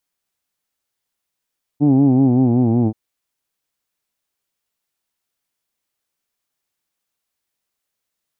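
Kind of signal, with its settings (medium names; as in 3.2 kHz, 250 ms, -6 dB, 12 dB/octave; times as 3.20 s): formant vowel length 1.13 s, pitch 142 Hz, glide -4 st, F1 280 Hz, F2 790 Hz, F3 2.4 kHz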